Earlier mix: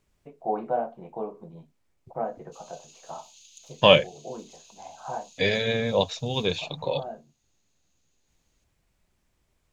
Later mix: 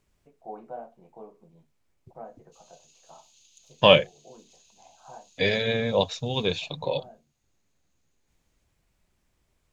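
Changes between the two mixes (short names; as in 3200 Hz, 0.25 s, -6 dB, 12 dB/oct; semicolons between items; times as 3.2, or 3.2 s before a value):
first voice -12.0 dB; background -6.5 dB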